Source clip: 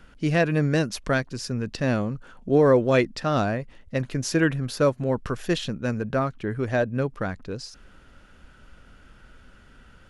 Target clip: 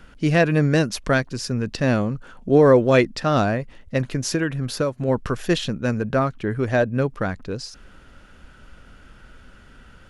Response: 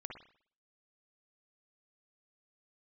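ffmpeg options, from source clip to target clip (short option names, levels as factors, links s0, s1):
-filter_complex "[0:a]asettb=1/sr,asplit=3[s0][s1][s2];[s0]atrim=end=4.094[s3];[s1]atrim=start=4.09:end=5.08,asetpts=PTS-STARTPTS,afade=t=in:d=0.004:c=qsin,afade=t=out:st=0.986:d=0.004:c=qsin,acompressor=threshold=0.0708:ratio=6[s4];[s2]atrim=start=5.076[s5];[s3][s4]acrossfade=d=0.004:c1=hsin:c2=qsin[s6];[s6][s5]acrossfade=d=0.004:c1=qsin:c2=hsin,volume=1.58"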